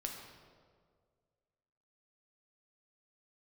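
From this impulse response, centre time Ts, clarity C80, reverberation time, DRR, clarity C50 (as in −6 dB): 54 ms, 5.0 dB, 1.9 s, 1.0 dB, 3.5 dB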